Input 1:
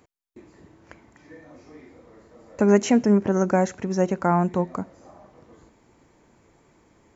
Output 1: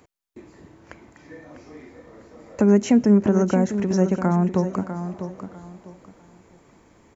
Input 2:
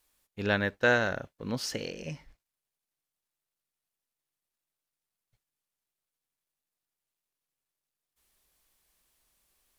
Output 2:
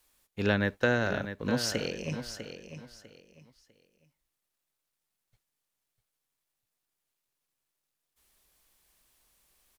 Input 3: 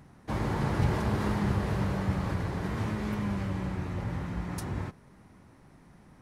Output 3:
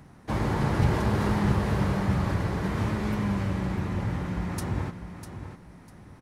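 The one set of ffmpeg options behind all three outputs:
-filter_complex "[0:a]acrossover=split=360[a][b];[b]acompressor=threshold=-29dB:ratio=5[c];[a][c]amix=inputs=2:normalize=0,asplit=2[d][e];[e]aecho=0:1:649|1298|1947:0.316|0.0822|0.0214[f];[d][f]amix=inputs=2:normalize=0,volume=3.5dB"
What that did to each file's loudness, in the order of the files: +1.5, -1.0, +4.0 LU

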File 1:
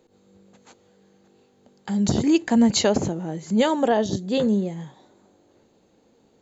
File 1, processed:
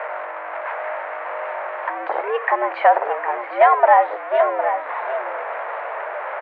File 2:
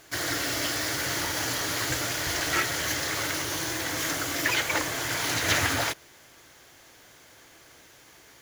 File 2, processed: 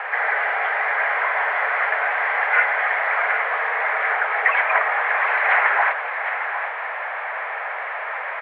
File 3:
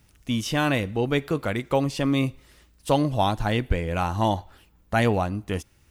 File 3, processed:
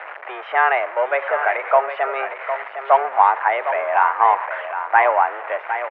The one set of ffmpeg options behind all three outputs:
-af "aeval=exprs='val(0)+0.5*0.0531*sgn(val(0))':c=same,aecho=1:1:758:0.335,highpass=f=500:t=q:w=0.5412,highpass=f=500:t=q:w=1.307,lowpass=f=2k:t=q:w=0.5176,lowpass=f=2k:t=q:w=0.7071,lowpass=f=2k:t=q:w=1.932,afreqshift=130,volume=8.5dB"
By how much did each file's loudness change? +1.0, +6.5, +6.0 LU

